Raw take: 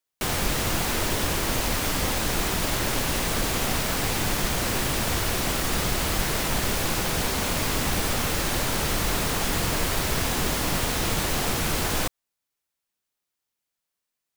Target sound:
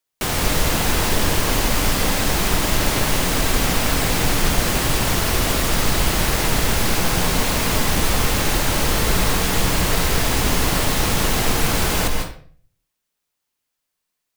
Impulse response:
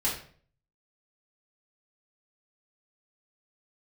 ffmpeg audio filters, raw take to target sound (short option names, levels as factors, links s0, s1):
-filter_complex "[0:a]asplit=2[s0][s1];[1:a]atrim=start_sample=2205,adelay=139[s2];[s1][s2]afir=irnorm=-1:irlink=0,volume=0.266[s3];[s0][s3]amix=inputs=2:normalize=0,volume=1.58"